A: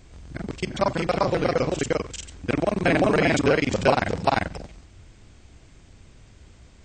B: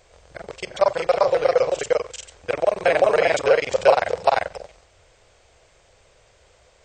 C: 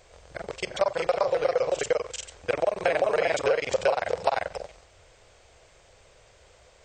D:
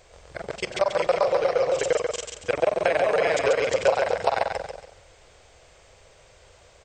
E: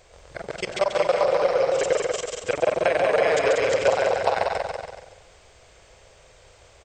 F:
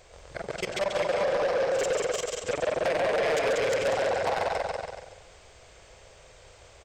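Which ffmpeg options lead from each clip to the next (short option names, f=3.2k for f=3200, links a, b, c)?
-af "lowshelf=f=370:t=q:w=3:g=-11.5"
-af "acompressor=threshold=-21dB:ratio=4"
-af "aecho=1:1:138|276|414|552:0.562|0.163|0.0473|0.0137,volume=1.5dB"
-af "aecho=1:1:190|424:0.562|0.178"
-af "asoftclip=type=tanh:threshold=-22dB"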